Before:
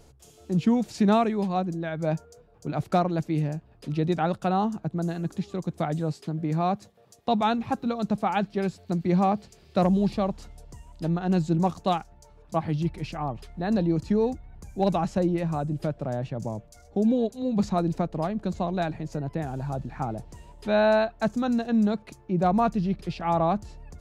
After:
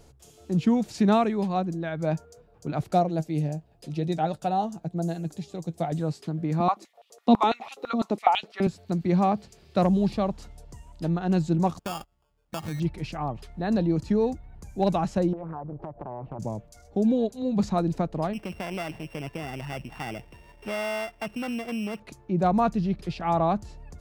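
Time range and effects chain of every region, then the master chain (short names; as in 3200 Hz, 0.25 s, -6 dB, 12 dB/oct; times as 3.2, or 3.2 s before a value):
2.92–5.92 EQ curve 310 Hz 0 dB, 730 Hz +5 dB, 1100 Hz -5 dB, 7300 Hz +7 dB + flange 1 Hz, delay 5.6 ms, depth 1.2 ms, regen +58%
6.6–8.67 notch 1600 Hz, Q 6 + stepped high-pass 12 Hz 230–3000 Hz
11.79–12.8 gate -43 dBFS, range -19 dB + compressor 5:1, threshold -28 dBFS + sample-rate reducer 2000 Hz
15.33–16.39 synth low-pass 830 Hz, resonance Q 2.5 + compressor 20:1, threshold -31 dBFS + Doppler distortion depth 0.77 ms
18.33–22 sample sorter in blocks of 16 samples + tone controls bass -6 dB, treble -9 dB + compressor 4:1, threshold -28 dBFS
whole clip: dry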